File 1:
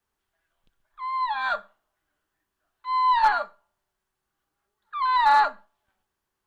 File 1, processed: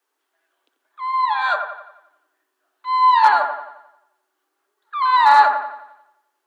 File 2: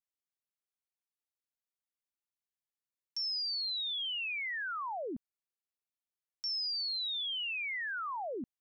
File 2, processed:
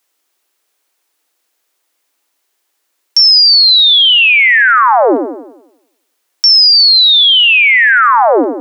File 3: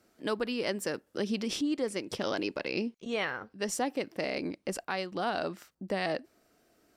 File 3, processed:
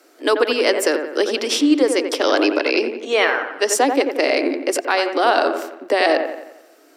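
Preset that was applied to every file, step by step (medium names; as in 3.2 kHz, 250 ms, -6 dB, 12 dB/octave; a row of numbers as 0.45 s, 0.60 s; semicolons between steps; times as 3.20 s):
steep high-pass 270 Hz 72 dB/octave; on a send: feedback echo behind a low-pass 88 ms, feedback 49%, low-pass 2 kHz, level -6 dB; on the sum: peak normalisation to -1.5 dBFS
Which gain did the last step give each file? +5.5 dB, +29.0 dB, +15.0 dB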